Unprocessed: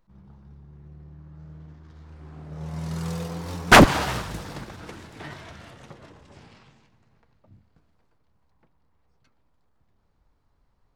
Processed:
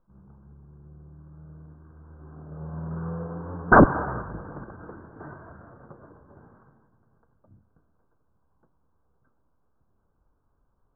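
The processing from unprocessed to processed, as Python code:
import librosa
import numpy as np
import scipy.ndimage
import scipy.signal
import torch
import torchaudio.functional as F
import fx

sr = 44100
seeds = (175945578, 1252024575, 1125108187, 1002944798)

y = (np.kron(scipy.signal.resample_poly(x, 1, 8), np.eye(8)[0]) * 8)[:len(x)]
y = scipy.signal.sosfilt(scipy.signal.cheby1(6, 3, 1600.0, 'lowpass', fs=sr, output='sos'), y)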